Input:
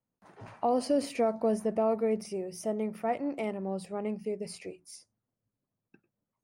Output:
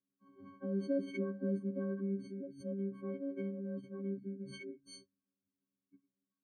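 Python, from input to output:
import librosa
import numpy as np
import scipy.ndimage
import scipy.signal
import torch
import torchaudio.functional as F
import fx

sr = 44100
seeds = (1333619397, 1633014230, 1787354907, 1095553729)

y = fx.freq_snap(x, sr, grid_st=6)
y = fx.vowel_filter(y, sr, vowel='i')
y = fx.pitch_keep_formants(y, sr, semitones=-2.0)
y = y * 10.0 ** (7.5 / 20.0)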